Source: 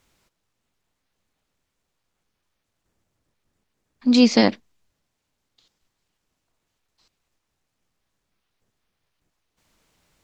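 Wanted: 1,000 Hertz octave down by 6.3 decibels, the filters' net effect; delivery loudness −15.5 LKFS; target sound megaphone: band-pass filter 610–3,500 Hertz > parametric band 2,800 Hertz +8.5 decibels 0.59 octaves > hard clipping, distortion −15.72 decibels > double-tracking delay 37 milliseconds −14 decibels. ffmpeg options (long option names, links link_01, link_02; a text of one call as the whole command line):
ffmpeg -i in.wav -filter_complex "[0:a]highpass=610,lowpass=3500,equalizer=frequency=1000:width_type=o:gain=-7.5,equalizer=frequency=2800:width_type=o:width=0.59:gain=8.5,asoftclip=type=hard:threshold=-14.5dB,asplit=2[link_01][link_02];[link_02]adelay=37,volume=-14dB[link_03];[link_01][link_03]amix=inputs=2:normalize=0,volume=10.5dB" out.wav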